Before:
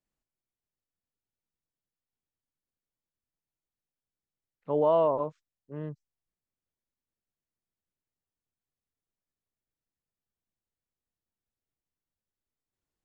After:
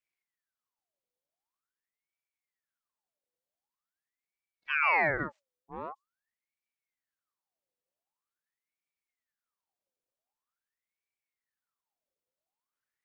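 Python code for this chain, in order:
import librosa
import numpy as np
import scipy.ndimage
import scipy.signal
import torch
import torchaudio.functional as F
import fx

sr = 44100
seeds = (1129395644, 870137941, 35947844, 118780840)

y = fx.ring_lfo(x, sr, carrier_hz=1400.0, swing_pct=65, hz=0.45)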